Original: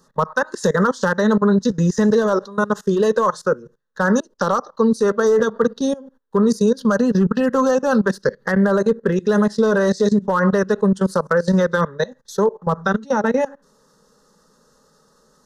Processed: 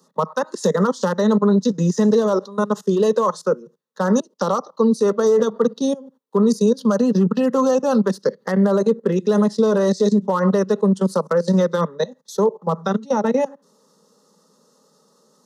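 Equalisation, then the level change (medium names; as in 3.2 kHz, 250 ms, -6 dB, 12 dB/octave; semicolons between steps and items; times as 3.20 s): steep high-pass 160 Hz 48 dB/octave; peaking EQ 1.6 kHz -12.5 dB 0.42 oct; 0.0 dB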